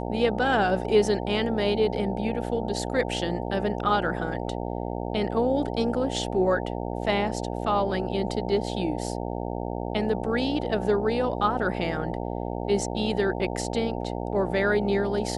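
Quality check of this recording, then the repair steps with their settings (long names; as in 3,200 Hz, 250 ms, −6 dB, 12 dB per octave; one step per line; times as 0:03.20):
mains buzz 60 Hz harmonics 15 −31 dBFS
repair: hum removal 60 Hz, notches 15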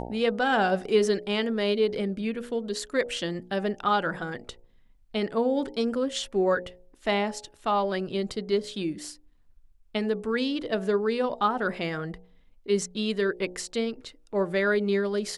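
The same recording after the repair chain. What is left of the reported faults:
none of them is left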